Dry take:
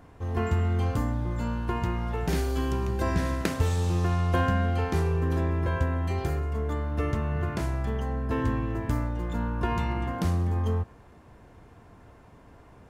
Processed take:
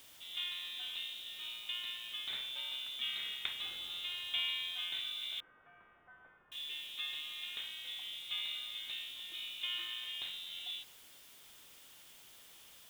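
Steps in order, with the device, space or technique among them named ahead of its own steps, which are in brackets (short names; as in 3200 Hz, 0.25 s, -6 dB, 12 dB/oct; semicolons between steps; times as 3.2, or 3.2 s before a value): scrambled radio voice (BPF 350–2700 Hz; inverted band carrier 3900 Hz; white noise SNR 16 dB); 5.4–6.52 elliptic low-pass 1500 Hz, stop band 70 dB; gain -7.5 dB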